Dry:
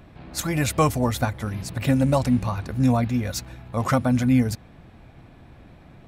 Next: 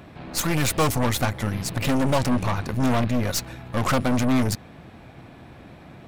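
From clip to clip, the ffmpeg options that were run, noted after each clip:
-af "highpass=f=140:p=1,aeval=exprs='0.376*(cos(1*acos(clip(val(0)/0.376,-1,1)))-cos(1*PI/2))+0.0596*(cos(8*acos(clip(val(0)/0.376,-1,1)))-cos(8*PI/2))':c=same,asoftclip=type=tanh:threshold=-21dB,volume=6dB"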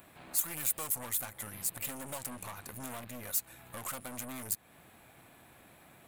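-af "lowshelf=f=490:g=-12,acompressor=threshold=-37dB:ratio=2.5,aexciter=amount=8.3:drive=2.8:freq=7.5k,volume=-7.5dB"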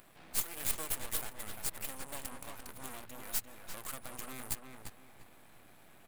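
-filter_complex "[0:a]aeval=exprs='max(val(0),0)':c=same,asplit=2[a][b];[b]adelay=346,lowpass=f=3k:p=1,volume=-4.5dB,asplit=2[c][d];[d]adelay=346,lowpass=f=3k:p=1,volume=0.31,asplit=2[e][f];[f]adelay=346,lowpass=f=3k:p=1,volume=0.31,asplit=2[g][h];[h]adelay=346,lowpass=f=3k:p=1,volume=0.31[i];[a][c][e][g][i]amix=inputs=5:normalize=0,volume=1dB"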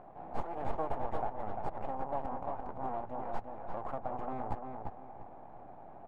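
-af "lowpass=f=790:t=q:w=3.8,volume=6dB"

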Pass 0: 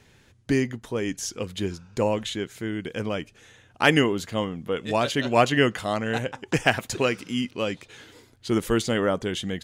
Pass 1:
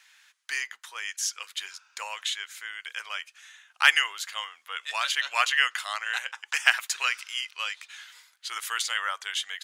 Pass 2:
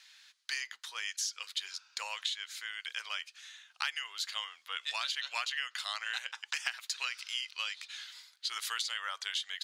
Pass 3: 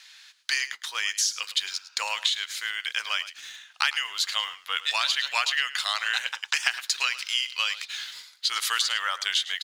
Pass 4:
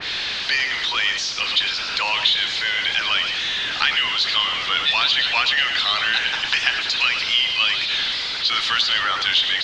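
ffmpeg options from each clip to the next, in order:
-af "highpass=f=1.2k:w=0.5412,highpass=f=1.2k:w=1.3066,volume=3dB"
-af "equalizer=f=4.3k:w=1.4:g=11.5,acompressor=threshold=-26dB:ratio=10,volume=-5.5dB"
-filter_complex "[0:a]asplit=2[a][b];[b]aeval=exprs='val(0)*gte(abs(val(0)),0.00473)':c=same,volume=-11dB[c];[a][c]amix=inputs=2:normalize=0,aecho=1:1:107:0.168,volume=8dB"
-af "aeval=exprs='val(0)+0.5*0.0944*sgn(val(0))':c=same,lowpass=f=4k:w=0.5412,lowpass=f=4k:w=1.3066,adynamicequalizer=threshold=0.0178:dfrequency=2700:dqfactor=0.7:tfrequency=2700:tqfactor=0.7:attack=5:release=100:ratio=0.375:range=3.5:mode=boostabove:tftype=highshelf"

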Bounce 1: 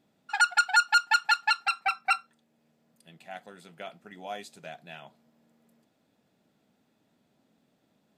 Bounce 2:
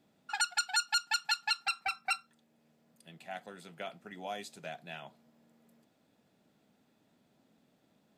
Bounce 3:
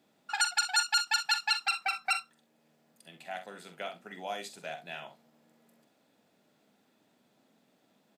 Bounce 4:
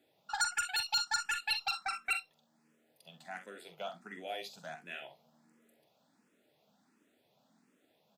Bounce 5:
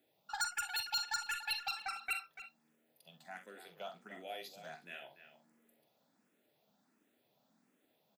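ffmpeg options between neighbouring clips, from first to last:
-filter_complex "[0:a]acrossover=split=300|3000[a][b][c];[b]acompressor=threshold=-36dB:ratio=4[d];[a][d][c]amix=inputs=3:normalize=0"
-filter_complex "[0:a]highpass=f=290:p=1,asplit=2[a][b];[b]aecho=0:1:45|65:0.335|0.211[c];[a][c]amix=inputs=2:normalize=0,volume=3dB"
-filter_complex "[0:a]asoftclip=type=tanh:threshold=-21dB,asplit=2[a][b];[b]afreqshift=1.4[c];[a][c]amix=inputs=2:normalize=1"
-filter_complex "[0:a]aexciter=amount=2:drive=6.3:freq=11k,asplit=2[a][b];[b]adelay=290,highpass=300,lowpass=3.4k,asoftclip=type=hard:threshold=-29.5dB,volume=-11dB[c];[a][c]amix=inputs=2:normalize=0,volume=-4.5dB"

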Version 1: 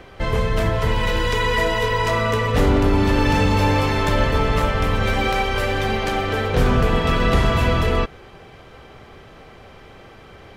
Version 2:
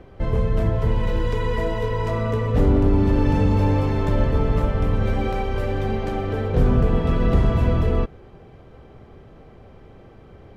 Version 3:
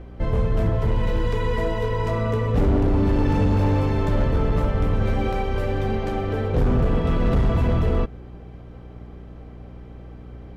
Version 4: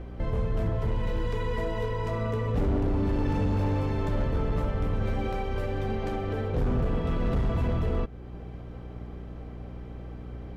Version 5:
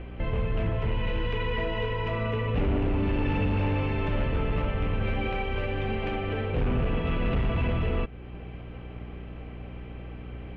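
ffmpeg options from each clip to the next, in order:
-af "tiltshelf=f=870:g=8,volume=-7dB"
-af "asoftclip=type=hard:threshold=-14.5dB,aeval=exprs='val(0)+0.0112*(sin(2*PI*60*n/s)+sin(2*PI*2*60*n/s)/2+sin(2*PI*3*60*n/s)/3+sin(2*PI*4*60*n/s)/4+sin(2*PI*5*60*n/s)/5)':c=same"
-af "alimiter=limit=-21dB:level=0:latency=1:release=379"
-af "lowpass=f=2.7k:t=q:w=4"

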